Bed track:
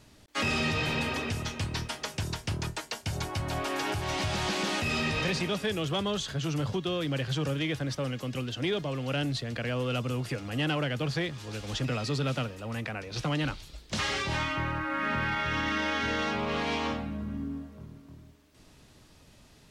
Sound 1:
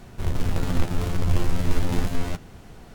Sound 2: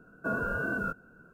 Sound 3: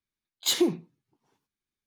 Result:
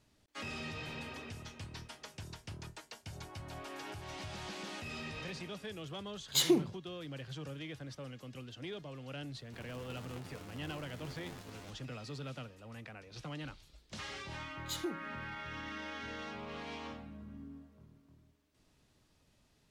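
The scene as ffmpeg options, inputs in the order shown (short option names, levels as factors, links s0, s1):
-filter_complex "[3:a]asplit=2[s0][s1];[0:a]volume=0.2[s2];[1:a]highpass=f=340:p=1[s3];[s0]atrim=end=1.86,asetpts=PTS-STARTPTS,volume=0.631,afade=t=in:d=0.004:c=hsin,afade=t=out:st=1.856:d=0.004:c=hsin,adelay=259749S[s4];[s3]atrim=end=2.94,asetpts=PTS-STARTPTS,volume=0.133,afade=t=in:d=0.004:c=hsin,afade=t=out:st=2.936:d=0.004:c=hsin,adelay=9340[s5];[s1]atrim=end=1.86,asetpts=PTS-STARTPTS,volume=0.168,afade=t=in:d=0.004:c=hsin,afade=t=out:st=1.856:d=0.004:c=hsin,adelay=14230[s6];[s2][s4][s5][s6]amix=inputs=4:normalize=0"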